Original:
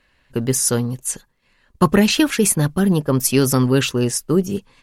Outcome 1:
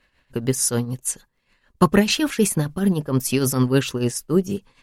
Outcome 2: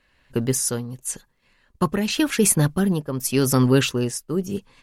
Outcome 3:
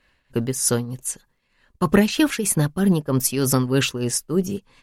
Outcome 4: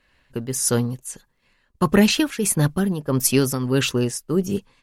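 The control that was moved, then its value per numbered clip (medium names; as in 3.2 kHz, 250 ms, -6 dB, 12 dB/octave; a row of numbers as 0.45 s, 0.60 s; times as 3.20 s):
tremolo, rate: 6.7 Hz, 0.88 Hz, 3.2 Hz, 1.6 Hz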